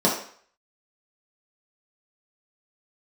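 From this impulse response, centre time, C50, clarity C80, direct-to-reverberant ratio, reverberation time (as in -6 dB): 32 ms, 5.5 dB, 9.5 dB, -5.0 dB, 0.55 s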